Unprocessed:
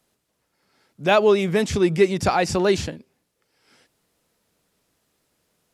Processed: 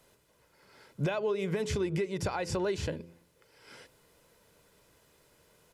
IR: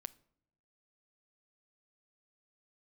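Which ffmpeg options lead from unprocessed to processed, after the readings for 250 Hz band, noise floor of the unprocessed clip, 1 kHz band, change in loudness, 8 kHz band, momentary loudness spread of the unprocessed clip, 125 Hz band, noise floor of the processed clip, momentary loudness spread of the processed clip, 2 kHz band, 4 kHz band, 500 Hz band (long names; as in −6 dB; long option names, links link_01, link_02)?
−12.0 dB, −74 dBFS, −15.5 dB, −13.0 dB, −10.5 dB, 8 LU, −7.0 dB, −68 dBFS, 6 LU, −13.5 dB, −13.0 dB, −13.0 dB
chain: -filter_complex "[0:a]aecho=1:1:2:0.4,bandreject=frequency=85.13:width_type=h:width=4,bandreject=frequency=170.26:width_type=h:width=4,bandreject=frequency=255.39:width_type=h:width=4,bandreject=frequency=340.52:width_type=h:width=4,bandreject=frequency=425.65:width_type=h:width=4,bandreject=frequency=510.78:width_type=h:width=4,acompressor=threshold=-28dB:ratio=6,alimiter=level_in=4.5dB:limit=-24dB:level=0:latency=1:release=342,volume=-4.5dB,asplit=2[link_01][link_02];[1:a]atrim=start_sample=2205,lowpass=3600[link_03];[link_02][link_03]afir=irnorm=-1:irlink=0,volume=-3.5dB[link_04];[link_01][link_04]amix=inputs=2:normalize=0,volume=3.5dB"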